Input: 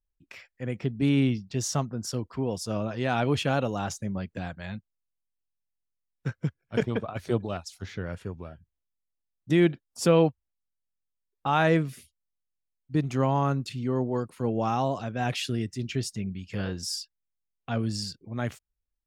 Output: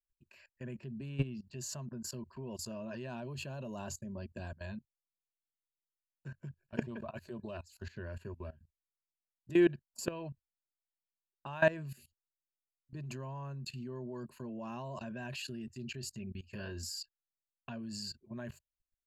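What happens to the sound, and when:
3.06–6.27 bell 1900 Hz -7 dB 1.3 oct
whole clip: ripple EQ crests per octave 1.4, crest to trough 13 dB; level quantiser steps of 19 dB; gain -4 dB

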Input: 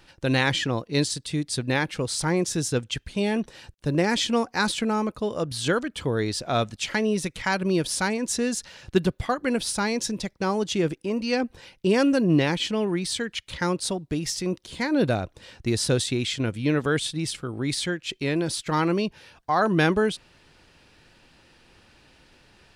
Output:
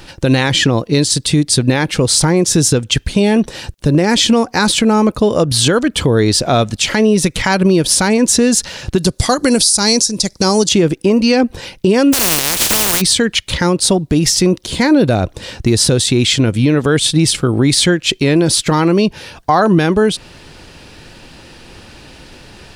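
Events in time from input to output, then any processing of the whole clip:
8.98–10.69 band shelf 6800 Hz +15 dB
12.12–13 spectral contrast lowered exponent 0.15
whole clip: bell 1700 Hz -4 dB 2.2 oct; compressor 10:1, threshold -26 dBFS; maximiser +20.5 dB; gain -1 dB

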